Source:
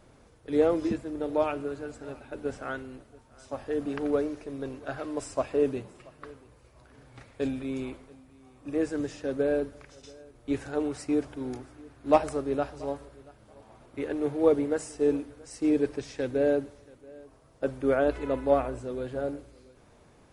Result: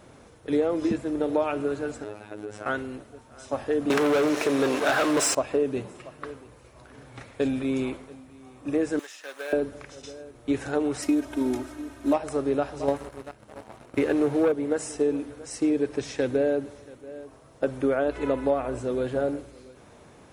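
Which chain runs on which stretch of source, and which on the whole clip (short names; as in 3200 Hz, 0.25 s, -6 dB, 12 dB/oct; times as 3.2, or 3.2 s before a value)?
2.04–2.66 compressor 10:1, threshold -37 dBFS + robotiser 105 Hz
3.9–5.35 weighting filter A + sample leveller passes 5
8.99–9.53 G.711 law mismatch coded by A + HPF 1300 Hz + upward compressor, threshold -48 dBFS
11.02–12.13 CVSD 64 kbps + comb 3.2 ms, depth 99%
12.88–14.52 notch 3400 Hz + sample leveller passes 2
whole clip: HPF 97 Hz 6 dB/oct; notch 4700 Hz, Q 17; compressor 6:1, threshold -28 dBFS; gain +7.5 dB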